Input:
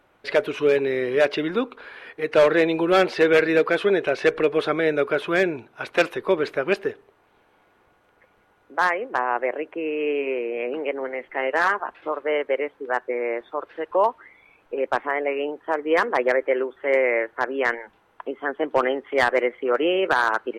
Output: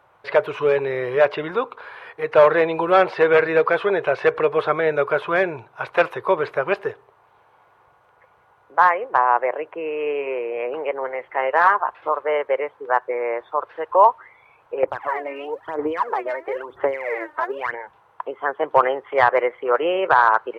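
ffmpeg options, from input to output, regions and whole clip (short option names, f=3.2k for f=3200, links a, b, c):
-filter_complex "[0:a]asettb=1/sr,asplit=3[a][b][c];[a]atrim=end=14.834[d];[b]atrim=start=14.83:end=17.74,asetpts=PTS-STARTPTS,afade=t=in:d=0.004:c=qsin,afade=t=out:st=2.906:d=0.004:c=qsin,equalizer=f=290:t=o:w=0.39:g=6.5,acompressor=threshold=-27dB:ratio=5:attack=3.2:release=140:knee=1:detection=peak,aphaser=in_gain=1:out_gain=1:delay=3.3:decay=0.77:speed=1:type=sinusoidal[e];[c]atrim=start=17.736[f];[d][e]acrossfade=d=0.004:c1=hsin:c2=qsin[g];[g][f]acrossfade=d=0.004:c1=qsin:c2=hsin,equalizer=f=125:t=o:w=1:g=9,equalizer=f=250:t=o:w=1:g=-11,equalizer=f=500:t=o:w=1:g=4,equalizer=f=1k:t=o:w=1:g=11,acrossover=split=3700[h][i];[i]acompressor=threshold=-50dB:ratio=4:attack=1:release=60[j];[h][j]amix=inputs=2:normalize=0,highpass=48,volume=-2dB"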